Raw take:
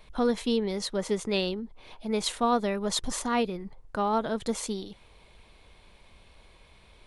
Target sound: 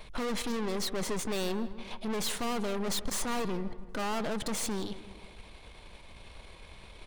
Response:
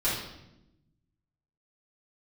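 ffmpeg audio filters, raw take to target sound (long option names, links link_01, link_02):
-filter_complex "[0:a]aeval=exprs='(tanh(100*val(0)+0.65)-tanh(0.65))/100':channel_layout=same,asplit=2[link_01][link_02];[link_02]adelay=161,lowpass=frequency=2300:poles=1,volume=-14dB,asplit=2[link_03][link_04];[link_04]adelay=161,lowpass=frequency=2300:poles=1,volume=0.5,asplit=2[link_05][link_06];[link_06]adelay=161,lowpass=frequency=2300:poles=1,volume=0.5,asplit=2[link_07][link_08];[link_08]adelay=161,lowpass=frequency=2300:poles=1,volume=0.5,asplit=2[link_09][link_10];[link_10]adelay=161,lowpass=frequency=2300:poles=1,volume=0.5[link_11];[link_01][link_03][link_05][link_07][link_09][link_11]amix=inputs=6:normalize=0,asplit=2[link_12][link_13];[1:a]atrim=start_sample=2205,adelay=142[link_14];[link_13][link_14]afir=irnorm=-1:irlink=0,volume=-33.5dB[link_15];[link_12][link_15]amix=inputs=2:normalize=0,volume=8.5dB"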